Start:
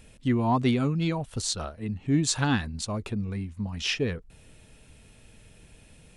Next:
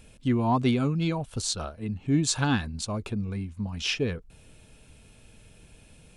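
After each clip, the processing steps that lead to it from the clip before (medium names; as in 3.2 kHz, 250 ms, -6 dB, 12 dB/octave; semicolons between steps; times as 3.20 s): band-stop 1.9 kHz, Q 10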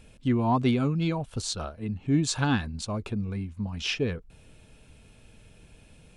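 treble shelf 6.3 kHz -6.5 dB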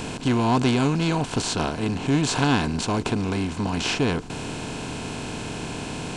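spectral levelling over time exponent 0.4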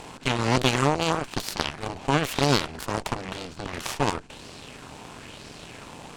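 Chebyshev shaper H 2 -13 dB, 4 -23 dB, 7 -15 dB, 8 -22 dB, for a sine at -5.5 dBFS; sweeping bell 1 Hz 810–4900 Hz +7 dB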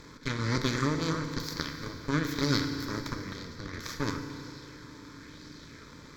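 static phaser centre 2.8 kHz, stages 6; FDN reverb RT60 2.8 s, high-frequency decay 0.9×, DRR 5 dB; trim -4.5 dB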